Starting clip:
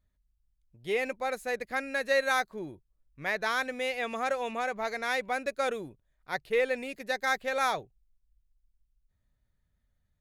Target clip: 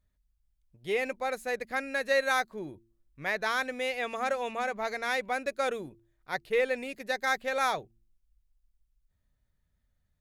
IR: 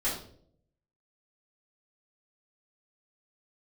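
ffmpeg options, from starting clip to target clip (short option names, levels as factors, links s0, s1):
-af "bandreject=f=113.7:t=h:w=4,bandreject=f=227.4:t=h:w=4,bandreject=f=341.1:t=h:w=4"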